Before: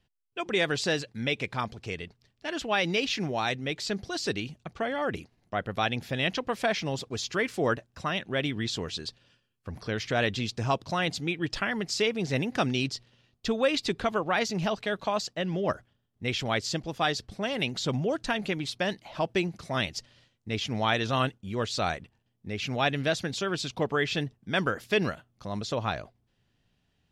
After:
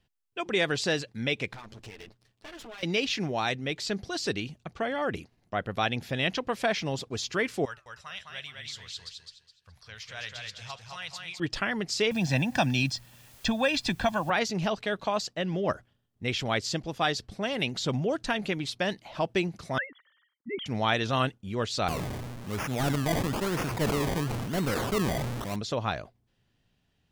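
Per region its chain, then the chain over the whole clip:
1.53–2.83 s: comb filter that takes the minimum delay 9.2 ms + compression 12:1, threshold -40 dBFS
7.65–11.40 s: amplifier tone stack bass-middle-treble 10-0-10 + flange 1.2 Hz, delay 4.7 ms, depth 5.9 ms, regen -88% + feedback delay 209 ms, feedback 28%, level -4 dB
12.11–14.30 s: comb 1.2 ms, depth 84% + word length cut 10-bit, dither triangular + three bands compressed up and down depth 40%
19.78–20.66 s: formants replaced by sine waves + static phaser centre 2.6 kHz, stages 6
21.88–25.56 s: one-bit delta coder 16 kbps, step -38 dBFS + decimation with a swept rate 22× 1 Hz + decay stretcher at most 22 dB/s
whole clip: none

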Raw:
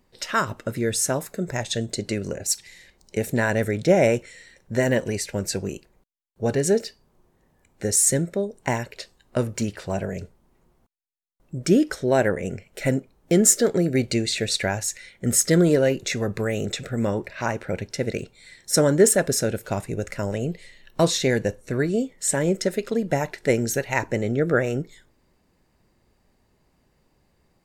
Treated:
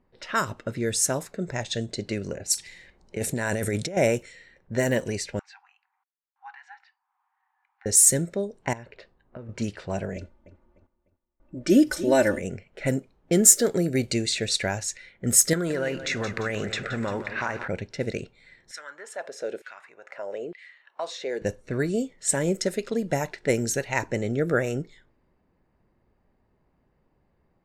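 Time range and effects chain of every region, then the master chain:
2.52–3.97 s: peaking EQ 9.9 kHz +8.5 dB 0.87 oct + compressor with a negative ratio -25 dBFS
5.39–7.86 s: brick-wall FIR high-pass 740 Hz + tape spacing loss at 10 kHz 31 dB + tape noise reduction on one side only encoder only
8.73–9.49 s: low-pass 2.3 kHz 6 dB/octave + compression, threshold -34 dBFS
10.16–12.39 s: comb 3.4 ms, depth 83% + feedback delay 300 ms, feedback 33%, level -13.5 dB
15.53–17.68 s: peaking EQ 1.4 kHz +12 dB 1.8 oct + compression 4:1, threshold -22 dBFS + bit-crushed delay 173 ms, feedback 55%, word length 8-bit, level -11.5 dB
18.71–21.42 s: compression 2:1, threshold -34 dBFS + LFO high-pass saw down 1.1 Hz 340–2000 Hz
whole clip: level-controlled noise filter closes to 1.7 kHz, open at -17.5 dBFS; treble shelf 6.3 kHz +8.5 dB; trim -3 dB

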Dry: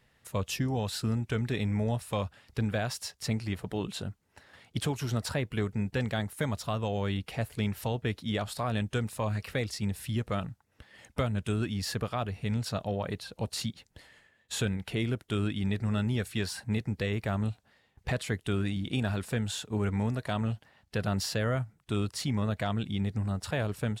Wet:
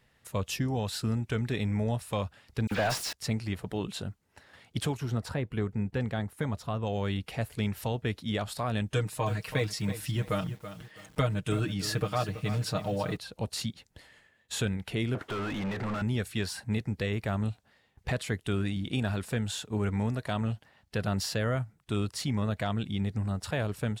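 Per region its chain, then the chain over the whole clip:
2.67–3.13 s: zero-crossing glitches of -34 dBFS + overdrive pedal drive 22 dB, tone 2.5 kHz, clips at -19.5 dBFS + phase dispersion lows, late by 44 ms, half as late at 2.3 kHz
4.97–6.87 s: treble shelf 2.1 kHz -9 dB + band-stop 600 Hz, Q 13
8.93–13.17 s: comb 6.5 ms, depth 79% + bit-crushed delay 329 ms, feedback 35%, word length 8-bit, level -11.5 dB
15.15–16.02 s: peaking EQ 1.2 kHz +7 dB 2.1 oct + compression 2.5:1, threshold -36 dBFS + overdrive pedal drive 33 dB, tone 1.1 kHz, clips at -24.5 dBFS
whole clip: none

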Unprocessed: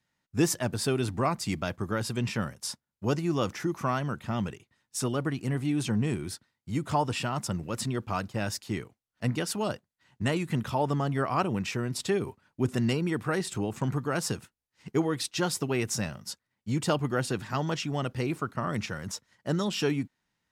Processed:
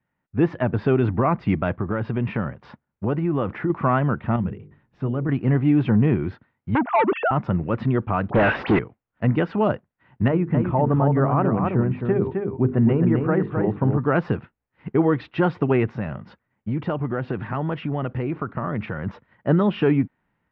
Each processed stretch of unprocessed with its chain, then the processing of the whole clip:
1.79–3.70 s: treble shelf 5 kHz -4.5 dB + compression 3:1, threshold -30 dBFS
4.36–5.29 s: hum notches 50/100/150/200/250/300/350/400/450/500 Hz + compression 1.5:1, threshold -59 dBFS + bass shelf 330 Hz +11 dB
6.75–7.31 s: formants replaced by sine waves + peaking EQ 460 Hz +8.5 dB 2.5 oct + transformer saturation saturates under 2.1 kHz
8.30–8.79 s: high-pass 63 Hz + phase dispersion highs, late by 60 ms, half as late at 1.7 kHz + overdrive pedal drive 33 dB, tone 4.7 kHz, clips at -20 dBFS
10.28–13.99 s: tape spacing loss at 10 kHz 41 dB + hum notches 50/100/150/200/250/300/350/400/450 Hz + delay 262 ms -5 dB
15.88–19.06 s: low-pass 12 kHz + compression 3:1, threshold -33 dBFS
whole clip: Bessel low-pass 1.6 kHz, order 6; level rider gain up to 7 dB; loudness maximiser +12 dB; trim -8.5 dB

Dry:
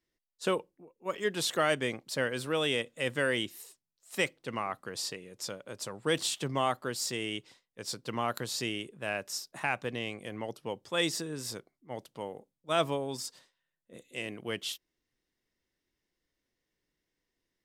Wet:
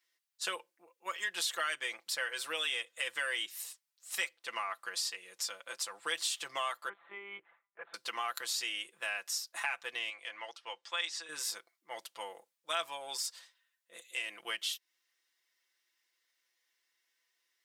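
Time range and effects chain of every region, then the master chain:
6.89–7.94 s: low-pass 1.6 kHz 24 dB/octave + monotone LPC vocoder at 8 kHz 200 Hz
10.10–11.29 s: high-pass 870 Hz 6 dB/octave + distance through air 95 m
whole clip: high-pass 1.2 kHz 12 dB/octave; comb 5.9 ms, depth 67%; compression 2.5:1, threshold -42 dBFS; trim +6 dB

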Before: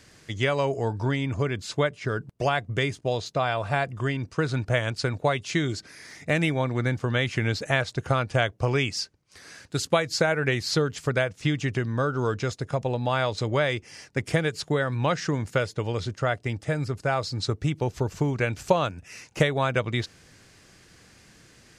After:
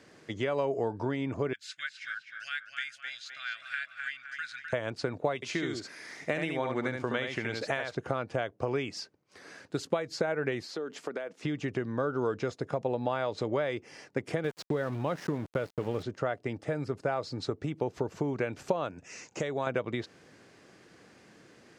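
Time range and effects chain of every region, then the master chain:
1.53–4.73 s: elliptic high-pass 1.5 kHz + tape echo 256 ms, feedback 51%, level -4.5 dB, low-pass 3.1 kHz
5.35–7.95 s: tilt shelf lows -4 dB, about 870 Hz + delay 72 ms -5 dB
10.64–11.43 s: high-pass 210 Hz 24 dB/octave + compression 12:1, threshold -32 dBFS
14.44–16.03 s: small samples zeroed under -33 dBFS + bass shelf 150 Hz +9 dB
18.98–19.67 s: compression 1.5:1, threshold -39 dBFS + resonant low-pass 7 kHz, resonance Q 3.9
whole clip: compression, threshold -27 dBFS; high-pass 340 Hz 12 dB/octave; tilt EQ -3.5 dB/octave

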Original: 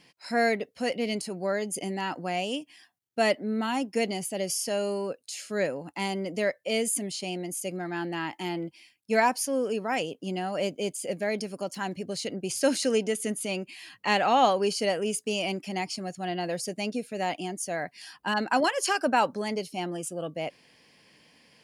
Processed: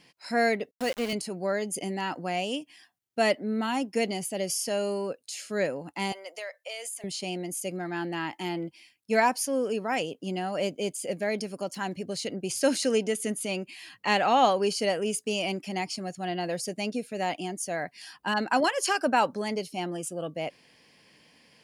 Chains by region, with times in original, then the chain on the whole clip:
0.71–1.13 s: high-pass 170 Hz + small samples zeroed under -34 dBFS
6.12–7.04 s: high-pass 620 Hz 24 dB/octave + compression 10:1, threshold -33 dBFS
whole clip: none

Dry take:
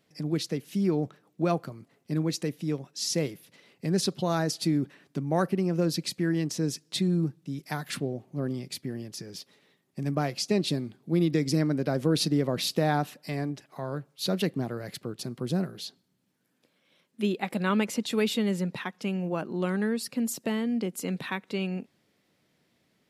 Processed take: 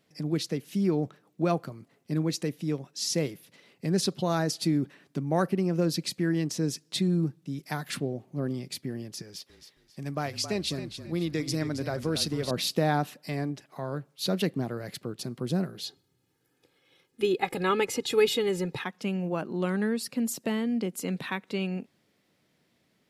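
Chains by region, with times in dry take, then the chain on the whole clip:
9.22–12.51 s: peaking EQ 230 Hz -6.5 dB 2.6 oct + frequency-shifting echo 270 ms, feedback 36%, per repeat -34 Hz, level -10 dB
15.83–18.84 s: bass shelf 150 Hz +9 dB + comb 2.4 ms, depth 81%
whole clip: none

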